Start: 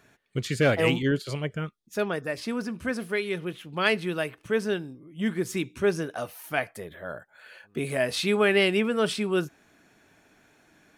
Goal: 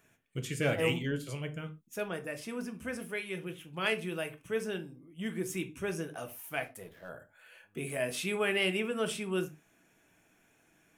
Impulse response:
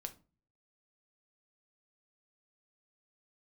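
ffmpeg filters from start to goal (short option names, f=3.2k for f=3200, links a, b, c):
-filter_complex "[0:a]aexciter=amount=1.2:drive=4.8:freq=2.3k,asettb=1/sr,asplit=3[a][b][c];[a]atrim=end=6.354[d];[b]atrim=start=6.35:end=7.09,asetpts=PTS-STARTPTS,afade=t=in:d=0.004:c=qsin,afade=t=out:st=0.736:d=0.004:c=qsin,aeval=exprs='sgn(val(0))*max(abs(val(0))-0.00266,0)':c=same[e];[c]atrim=start=7.086[f];[d][e]acrossfade=d=0.004:c1=hsin:c2=qsin[g];[g][f]acrossfade=d=0.004:c1=qsin:c2=hsin[h];[1:a]atrim=start_sample=2205,atrim=end_sample=6174[i];[h][i]afir=irnorm=-1:irlink=0,volume=-5dB"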